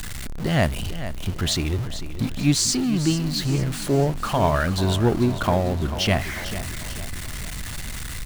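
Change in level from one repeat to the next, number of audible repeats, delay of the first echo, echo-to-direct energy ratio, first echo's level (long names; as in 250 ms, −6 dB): −6.5 dB, 4, 444 ms, −11.0 dB, −12.0 dB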